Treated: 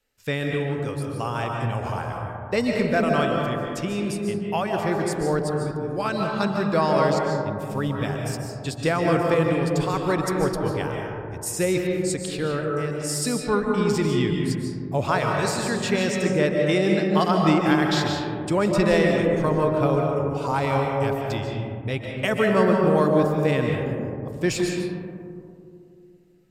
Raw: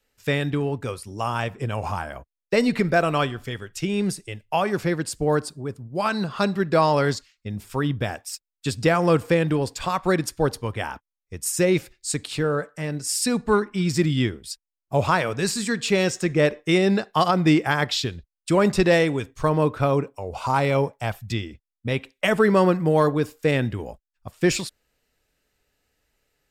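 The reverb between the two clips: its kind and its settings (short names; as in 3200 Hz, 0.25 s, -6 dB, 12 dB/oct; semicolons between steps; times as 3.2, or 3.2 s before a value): digital reverb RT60 2.6 s, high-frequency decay 0.25×, pre-delay 0.105 s, DRR 0.5 dB; gain -3.5 dB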